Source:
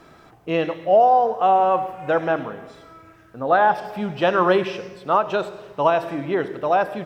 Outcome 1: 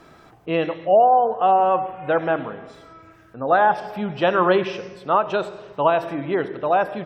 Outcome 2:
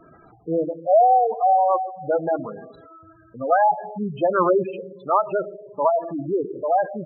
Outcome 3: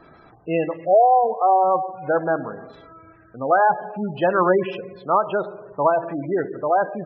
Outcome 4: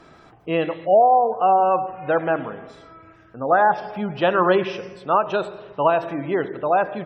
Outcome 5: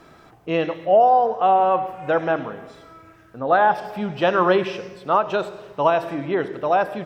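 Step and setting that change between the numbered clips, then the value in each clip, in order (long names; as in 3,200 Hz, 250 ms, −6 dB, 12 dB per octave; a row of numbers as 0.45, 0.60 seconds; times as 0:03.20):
gate on every frequency bin, under each frame's peak: −45, −10, −20, −35, −60 decibels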